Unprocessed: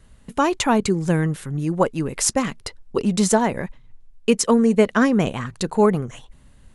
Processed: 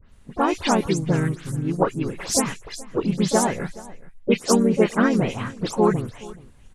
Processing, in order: spectral delay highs late, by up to 0.115 s; echo 0.425 s -20.5 dB; harmoniser -3 st -4 dB, +4 st -13 dB; gain -3 dB

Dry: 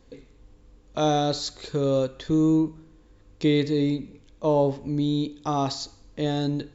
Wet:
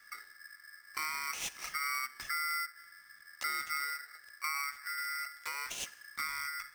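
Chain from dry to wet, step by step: compressor 6:1, threshold -31 dBFS, peak gain reduction 13.5 dB; fixed phaser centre 420 Hz, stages 4; polarity switched at an audio rate 1700 Hz; gain -1.5 dB

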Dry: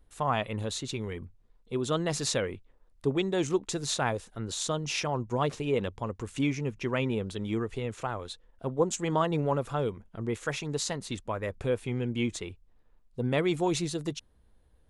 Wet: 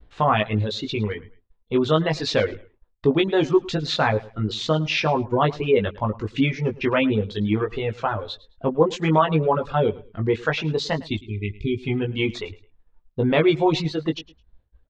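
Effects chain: LPF 4100 Hz 24 dB/oct; doubler 19 ms -4 dB; in parallel at -2 dB: limiter -20.5 dBFS, peak gain reduction 9.5 dB; on the sum: reverb removal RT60 1.4 s; spectral delete 10.99–11.83, 430–2000 Hz; feedback echo 0.107 s, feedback 26%, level -20 dB; expander -53 dBFS; gain +4.5 dB

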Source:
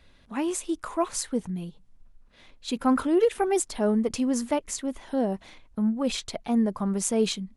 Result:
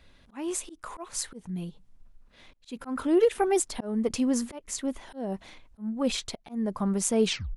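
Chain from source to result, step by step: tape stop at the end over 0.30 s; auto swell 0.262 s

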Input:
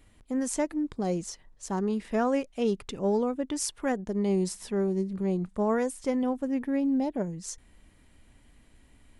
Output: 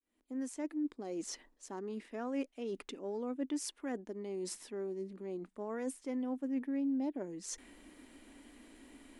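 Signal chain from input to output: opening faded in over 2.00 s; dynamic EQ 2200 Hz, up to +4 dB, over -60 dBFS, Q 1; reverse; compressor 6:1, threshold -45 dBFS, peak gain reduction 21.5 dB; reverse; resonant low shelf 190 Hz -13 dB, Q 3; gain +4 dB

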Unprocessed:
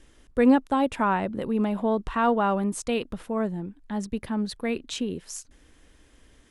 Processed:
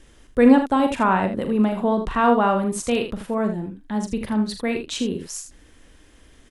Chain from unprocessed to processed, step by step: early reflections 42 ms -8.5 dB, 79 ms -9 dB; gain +4 dB

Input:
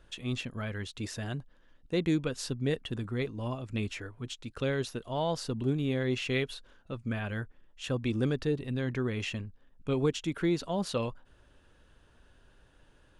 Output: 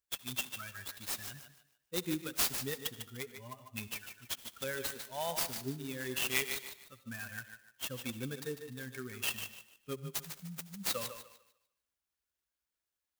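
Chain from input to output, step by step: per-bin expansion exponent 2; HPF 130 Hz 12 dB/oct; high shelf 5100 Hz +10.5 dB; spectral delete 9.96–10.86, 210–6000 Hz; tilt shelf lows -7 dB, about 1400 Hz; thinning echo 0.149 s, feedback 30%, high-pass 300 Hz, level -8 dB; on a send at -16 dB: reverb RT60 0.65 s, pre-delay 63 ms; on the sum: clock jitter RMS 0.049 ms

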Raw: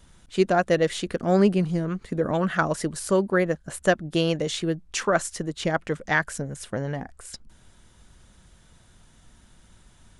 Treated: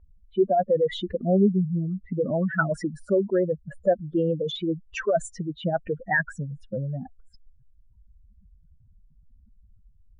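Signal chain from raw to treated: spectral contrast raised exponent 3.3; low-pass opened by the level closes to 1300 Hz, open at -18 dBFS

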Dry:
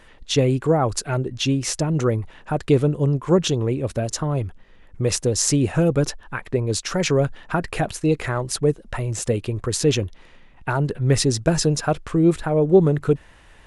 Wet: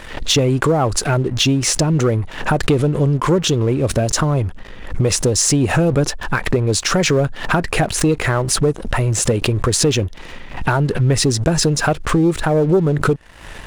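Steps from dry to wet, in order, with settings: compressor 3:1, threshold -32 dBFS, peak gain reduction 17 dB; sample leveller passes 2; backwards sustainer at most 97 dB/s; gain +8.5 dB

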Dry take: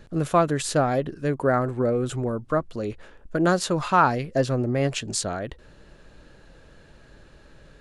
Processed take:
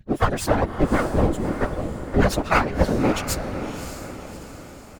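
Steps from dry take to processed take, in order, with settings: per-bin expansion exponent 1.5; comb 3.8 ms, depth 67%; dynamic EQ 310 Hz, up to +4 dB, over -36 dBFS, Q 2.4; half-wave rectifier; plain phase-vocoder stretch 0.64×; whisperiser; on a send: diffused feedback echo 0.596 s, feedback 49%, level -9.5 dB; on the sum: gain +8.5 dB

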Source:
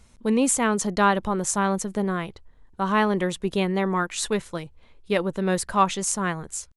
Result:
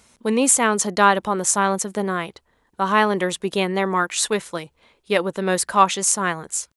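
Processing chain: HPF 360 Hz 6 dB/oct; high shelf 9300 Hz +4 dB; gain +5.5 dB

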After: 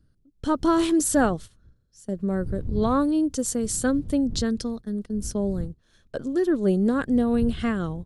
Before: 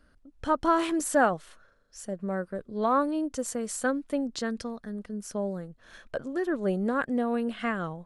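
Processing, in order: wind noise 93 Hz -44 dBFS; gate -40 dBFS, range -14 dB; band shelf 1200 Hz -9 dB 2.6 oct; gain +7.5 dB

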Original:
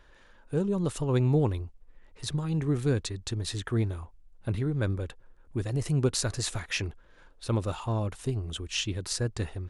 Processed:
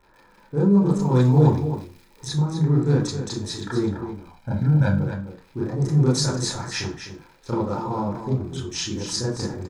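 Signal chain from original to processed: Wiener smoothing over 15 samples; fifteen-band EQ 160 Hz +4 dB, 1000 Hz +5 dB, 2500 Hz -12 dB, 6300 Hz +9 dB; crackle 72/s -43 dBFS; 1.01–2.27 high shelf 4600 Hz +9.5 dB; 4–5.01 comb 1.3 ms, depth 88%; echo 0.255 s -9.5 dB; reverb RT60 0.35 s, pre-delay 28 ms, DRR -7.5 dB; gain -4.5 dB

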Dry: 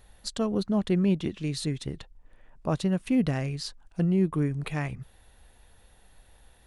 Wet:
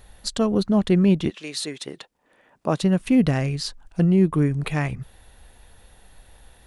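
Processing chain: 1.29–2.8 HPF 640 Hz -> 170 Hz 12 dB/oct; gain +6.5 dB

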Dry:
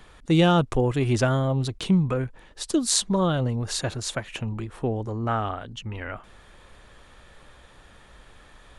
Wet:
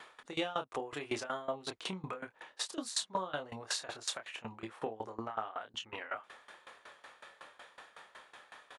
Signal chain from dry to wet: HPF 840 Hz 12 dB/oct; tilt -2.5 dB/oct; compressor 3:1, threshold -39 dBFS, peak gain reduction 13.5 dB; doubler 27 ms -4.5 dB; dB-ramp tremolo decaying 5.4 Hz, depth 19 dB; gain +7 dB

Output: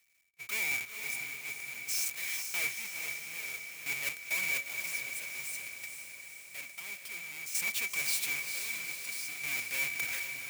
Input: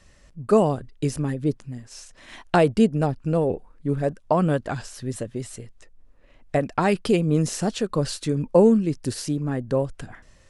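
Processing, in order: half-waves squared off; differentiator; gate -54 dBFS, range -57 dB; low shelf 110 Hz +2.5 dB; reverse; compressor, threshold -36 dBFS, peak gain reduction 21 dB; reverse; small resonant body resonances 2300 Hz, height 18 dB, ringing for 50 ms; power-law curve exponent 0.5; chopper 0.53 Hz, depth 65%, duty 45%; on a send: diffused feedback echo 0.455 s, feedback 60%, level -6 dB; on the sum: gain -1.5 dB

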